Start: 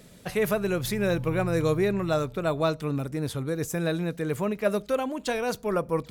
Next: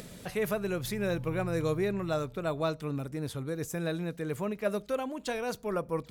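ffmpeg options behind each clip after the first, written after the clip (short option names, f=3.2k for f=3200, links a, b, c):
-af "acompressor=mode=upward:threshold=-31dB:ratio=2.5,volume=-5.5dB"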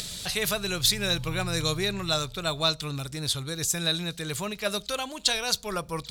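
-af "equalizer=f=125:t=o:w=1:g=-3,equalizer=f=250:t=o:w=1:g=-11,equalizer=f=500:t=o:w=1:g=-9,equalizer=f=1k:t=o:w=1:g=-3,equalizer=f=2k:t=o:w=1:g=-4,equalizer=f=4k:t=o:w=1:g=12,equalizer=f=8k:t=o:w=1:g=6,volume=9dB"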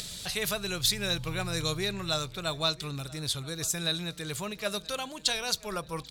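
-filter_complex "[0:a]asplit=2[a][b];[b]adelay=981,lowpass=f=4.6k:p=1,volume=-21.5dB,asplit=2[c][d];[d]adelay=981,lowpass=f=4.6k:p=1,volume=0.46,asplit=2[e][f];[f]adelay=981,lowpass=f=4.6k:p=1,volume=0.46[g];[a][c][e][g]amix=inputs=4:normalize=0,volume=-3.5dB"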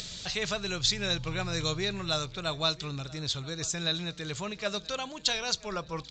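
-ar 16000 -c:a libvorbis -b:a 64k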